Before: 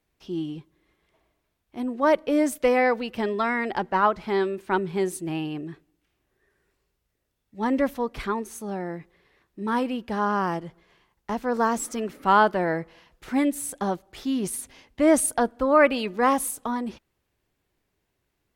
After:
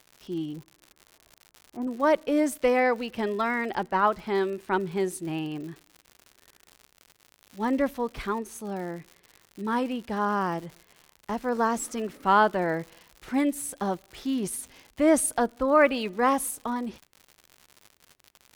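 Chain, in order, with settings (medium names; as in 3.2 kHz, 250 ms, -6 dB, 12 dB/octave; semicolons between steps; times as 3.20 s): 0.53–1.87 s: low-pass 1.5 kHz 24 dB/octave; crackle 130 per s -35 dBFS; trim -2 dB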